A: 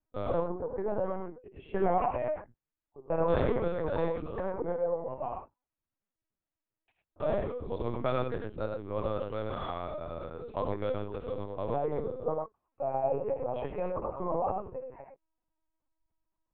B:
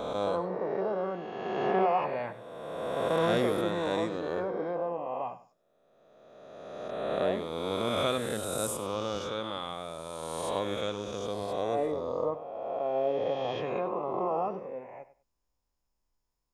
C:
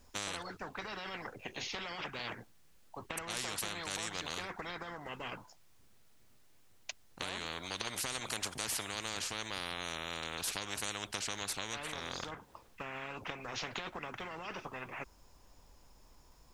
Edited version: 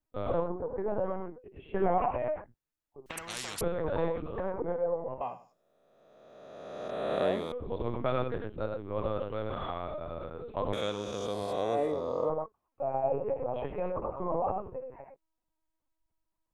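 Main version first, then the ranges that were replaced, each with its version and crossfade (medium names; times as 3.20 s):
A
3.06–3.61 s: from C
5.21–7.52 s: from B
10.73–12.30 s: from B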